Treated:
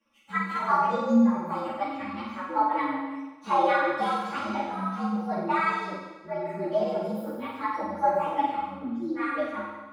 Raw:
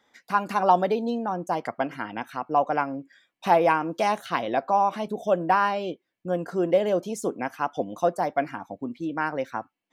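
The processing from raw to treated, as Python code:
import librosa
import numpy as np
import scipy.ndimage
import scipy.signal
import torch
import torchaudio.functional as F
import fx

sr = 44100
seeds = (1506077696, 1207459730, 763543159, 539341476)

y = fx.partial_stretch(x, sr, pct=118)
y = fx.high_shelf(y, sr, hz=4900.0, db=-10.5)
y = y + 0.94 * np.pad(y, (int(3.6 * sr / 1000.0), 0))[:len(y)]
y = fx.room_flutter(y, sr, wall_m=8.1, rt60_s=1.2)
y = fx.ensemble(y, sr)
y = F.gain(torch.from_numpy(y), -2.5).numpy()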